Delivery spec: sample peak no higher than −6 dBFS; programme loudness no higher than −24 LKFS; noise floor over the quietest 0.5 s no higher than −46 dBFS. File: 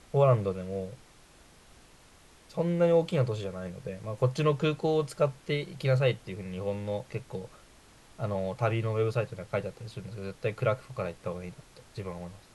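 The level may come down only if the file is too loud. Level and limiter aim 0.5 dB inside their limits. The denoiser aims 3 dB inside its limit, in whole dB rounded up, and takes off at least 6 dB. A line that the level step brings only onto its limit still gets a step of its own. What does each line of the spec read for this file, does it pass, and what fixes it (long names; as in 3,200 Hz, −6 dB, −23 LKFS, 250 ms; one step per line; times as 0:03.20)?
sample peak −11.0 dBFS: in spec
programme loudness −30.5 LKFS: in spec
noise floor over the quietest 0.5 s −57 dBFS: in spec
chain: no processing needed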